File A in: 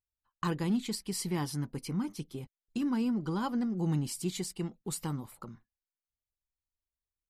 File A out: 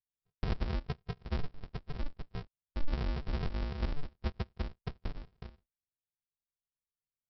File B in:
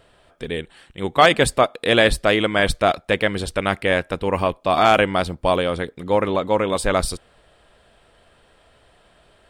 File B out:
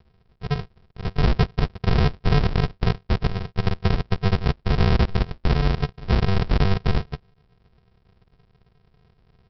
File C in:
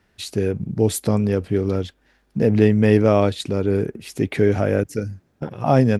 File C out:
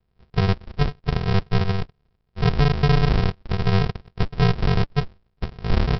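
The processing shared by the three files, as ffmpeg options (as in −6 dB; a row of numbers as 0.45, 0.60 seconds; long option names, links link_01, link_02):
-af "highpass=frequency=280:width=0.5412,highpass=frequency=280:width=1.3066,equalizer=frequency=290:width_type=q:width=4:gain=8,equalizer=frequency=420:width_type=q:width=4:gain=4,equalizer=frequency=710:width_type=q:width=4:gain=-4,equalizer=frequency=1400:width_type=q:width=4:gain=6,lowpass=frequency=2500:width=0.5412,lowpass=frequency=2500:width=1.3066,adynamicsmooth=sensitivity=5:basefreq=1100,aresample=11025,acrusher=samples=38:mix=1:aa=0.000001,aresample=44100,alimiter=level_in=9dB:limit=-1dB:release=50:level=0:latency=1,volume=-8.5dB"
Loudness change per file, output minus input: −6.0, −4.0, −3.0 LU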